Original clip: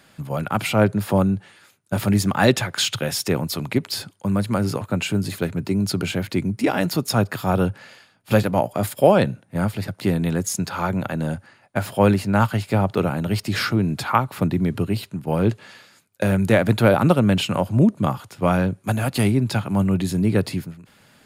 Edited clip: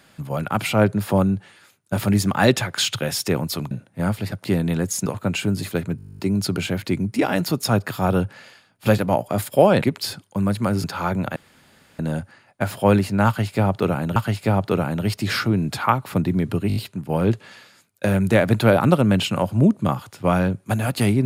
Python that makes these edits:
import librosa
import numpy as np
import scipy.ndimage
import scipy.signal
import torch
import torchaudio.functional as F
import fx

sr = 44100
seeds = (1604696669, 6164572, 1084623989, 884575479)

y = fx.edit(x, sr, fx.swap(start_s=3.71, length_s=1.02, other_s=9.27, other_length_s=1.35),
    fx.stutter(start_s=5.64, slice_s=0.02, count=12),
    fx.insert_room_tone(at_s=11.14, length_s=0.63),
    fx.repeat(start_s=12.42, length_s=0.89, count=2),
    fx.stutter(start_s=14.94, slice_s=0.02, count=5), tone=tone)